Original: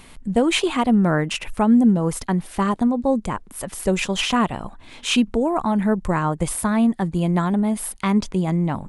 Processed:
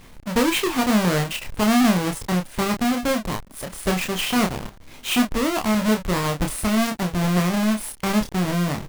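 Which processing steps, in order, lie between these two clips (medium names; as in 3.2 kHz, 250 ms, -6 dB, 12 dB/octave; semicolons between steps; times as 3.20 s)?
square wave that keeps the level; doubling 28 ms -5 dB; trim -6.5 dB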